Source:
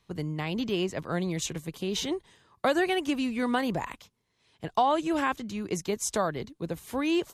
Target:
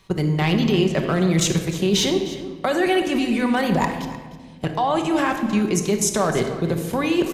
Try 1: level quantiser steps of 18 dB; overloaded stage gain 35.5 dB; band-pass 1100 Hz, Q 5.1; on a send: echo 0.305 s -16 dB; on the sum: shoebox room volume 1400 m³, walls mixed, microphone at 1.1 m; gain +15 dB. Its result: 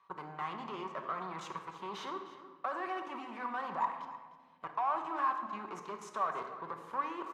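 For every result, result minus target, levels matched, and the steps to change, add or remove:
overloaded stage: distortion +17 dB; 1000 Hz band +9.0 dB
change: overloaded stage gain 27.5 dB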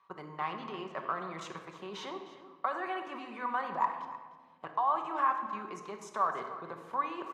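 1000 Hz band +9.0 dB
remove: band-pass 1100 Hz, Q 5.1

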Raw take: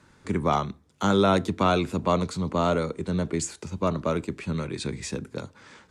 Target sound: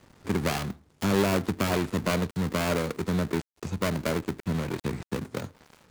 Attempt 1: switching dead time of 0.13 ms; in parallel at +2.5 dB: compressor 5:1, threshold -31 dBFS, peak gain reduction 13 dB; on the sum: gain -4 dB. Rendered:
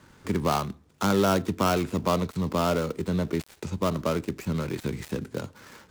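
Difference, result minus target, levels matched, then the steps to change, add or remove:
switching dead time: distortion -10 dB
change: switching dead time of 0.41 ms

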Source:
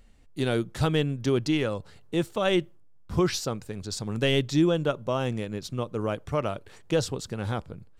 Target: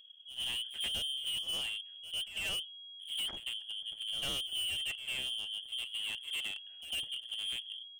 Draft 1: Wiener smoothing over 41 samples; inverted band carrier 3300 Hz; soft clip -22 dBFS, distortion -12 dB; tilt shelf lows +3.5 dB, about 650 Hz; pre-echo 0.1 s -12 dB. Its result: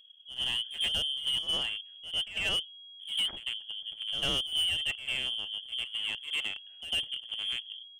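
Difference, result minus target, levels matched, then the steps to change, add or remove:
soft clip: distortion -7 dB
change: soft clip -31 dBFS, distortion -5 dB

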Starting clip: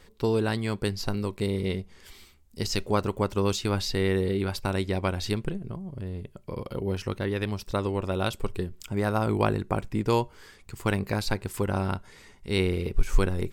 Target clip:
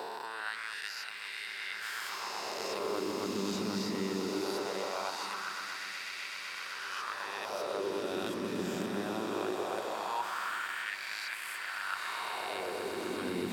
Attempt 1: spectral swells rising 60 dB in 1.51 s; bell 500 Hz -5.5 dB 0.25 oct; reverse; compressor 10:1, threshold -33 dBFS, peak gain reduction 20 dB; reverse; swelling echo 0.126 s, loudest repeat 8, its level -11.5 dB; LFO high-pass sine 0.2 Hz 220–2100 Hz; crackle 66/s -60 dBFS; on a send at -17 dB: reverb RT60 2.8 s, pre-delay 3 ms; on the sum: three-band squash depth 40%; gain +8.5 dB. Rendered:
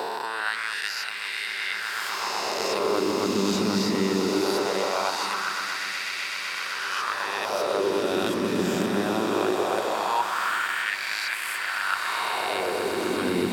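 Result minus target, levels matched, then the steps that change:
compressor: peak gain reduction -10.5 dB
change: compressor 10:1, threshold -44.5 dBFS, peak gain reduction 30.5 dB

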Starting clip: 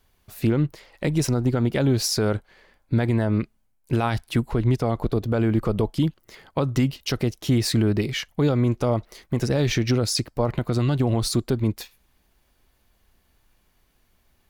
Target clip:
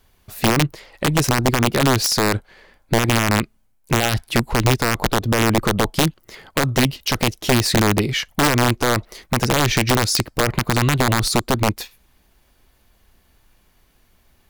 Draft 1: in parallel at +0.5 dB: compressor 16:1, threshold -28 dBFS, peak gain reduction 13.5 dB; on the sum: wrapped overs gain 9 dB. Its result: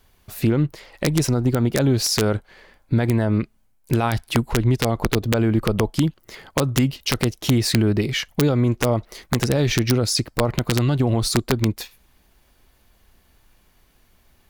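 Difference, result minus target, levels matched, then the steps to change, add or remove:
compressor: peak gain reduction +6 dB
change: compressor 16:1, threshold -21.5 dBFS, peak gain reduction 7 dB

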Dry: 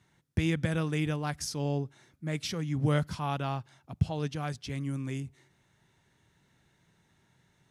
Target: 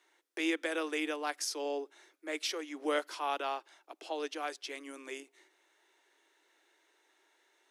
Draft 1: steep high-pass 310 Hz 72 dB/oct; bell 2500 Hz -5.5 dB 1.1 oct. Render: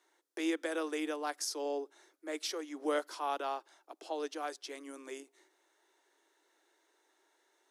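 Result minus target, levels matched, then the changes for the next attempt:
2000 Hz band -3.5 dB
change: bell 2500 Hz +2 dB 1.1 oct

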